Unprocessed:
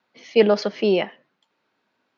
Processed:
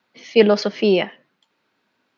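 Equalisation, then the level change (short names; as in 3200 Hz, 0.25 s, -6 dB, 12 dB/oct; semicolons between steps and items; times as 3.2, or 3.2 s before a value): bell 720 Hz -3.5 dB 1.9 oct; +4.5 dB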